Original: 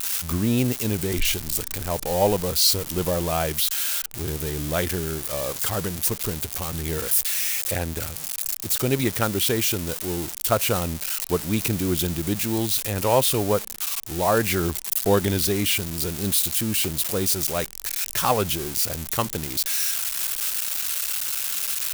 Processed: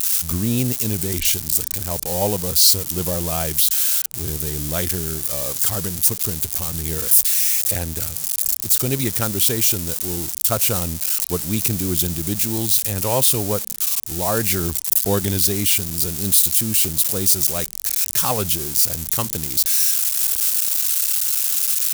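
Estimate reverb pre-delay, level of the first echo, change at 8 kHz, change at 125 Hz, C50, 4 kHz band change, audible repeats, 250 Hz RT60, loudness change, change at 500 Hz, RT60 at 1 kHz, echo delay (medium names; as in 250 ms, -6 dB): no reverb, no echo, +7.0 dB, +2.0 dB, no reverb, +3.0 dB, no echo, no reverb, +5.5 dB, -2.0 dB, no reverb, no echo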